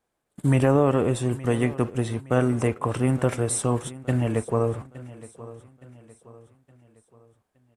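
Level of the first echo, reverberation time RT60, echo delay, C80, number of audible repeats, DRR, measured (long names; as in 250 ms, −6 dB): −18.0 dB, no reverb audible, 867 ms, no reverb audible, 3, no reverb audible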